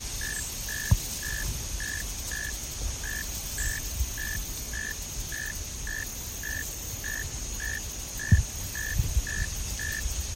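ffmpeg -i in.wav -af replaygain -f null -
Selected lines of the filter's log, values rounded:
track_gain = +17.8 dB
track_peak = 0.273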